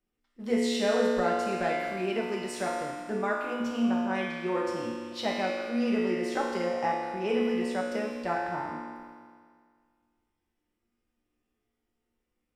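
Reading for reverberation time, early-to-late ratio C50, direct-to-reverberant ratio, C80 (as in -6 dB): 1.9 s, 0.0 dB, -4.0 dB, 1.5 dB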